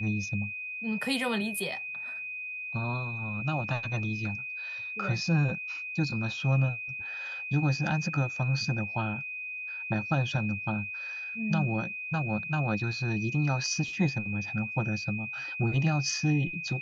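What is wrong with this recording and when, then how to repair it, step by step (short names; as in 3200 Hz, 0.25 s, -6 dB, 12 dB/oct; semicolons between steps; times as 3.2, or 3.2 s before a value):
tone 2500 Hz -35 dBFS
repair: notch 2500 Hz, Q 30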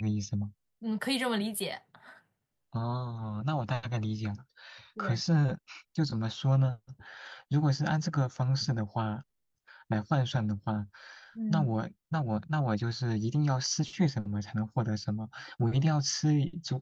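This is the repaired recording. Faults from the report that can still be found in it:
none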